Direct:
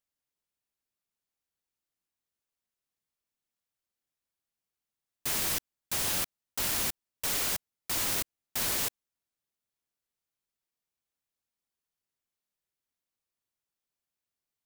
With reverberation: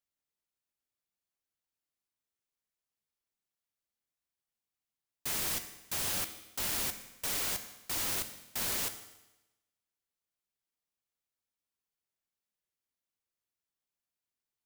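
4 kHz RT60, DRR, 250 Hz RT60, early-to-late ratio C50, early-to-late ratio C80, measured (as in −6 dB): 0.95 s, 8.0 dB, 1.0 s, 11.0 dB, 13.0 dB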